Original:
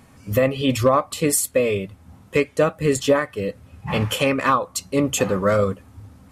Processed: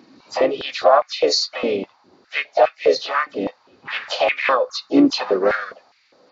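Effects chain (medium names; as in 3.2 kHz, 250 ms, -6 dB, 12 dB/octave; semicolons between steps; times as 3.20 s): knee-point frequency compression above 3.5 kHz 4:1; harmony voices +3 st -8 dB, +5 st -13 dB, +7 st -15 dB; step-sequenced high-pass 4.9 Hz 280–2200 Hz; trim -3.5 dB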